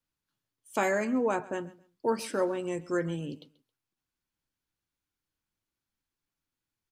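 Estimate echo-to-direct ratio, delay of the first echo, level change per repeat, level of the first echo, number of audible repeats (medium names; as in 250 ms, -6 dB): -19.5 dB, 135 ms, -13.0 dB, -19.5 dB, 2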